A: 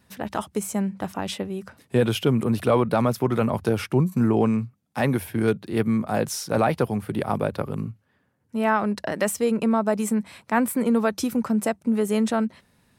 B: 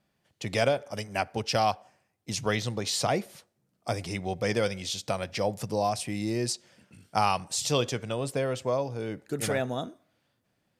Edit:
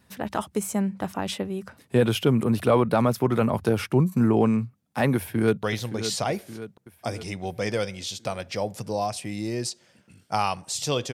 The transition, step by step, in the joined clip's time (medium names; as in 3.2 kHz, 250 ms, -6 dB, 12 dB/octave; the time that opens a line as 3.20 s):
A
5.15–5.63 s: echo throw 570 ms, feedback 55%, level -10.5 dB
5.63 s: go over to B from 2.46 s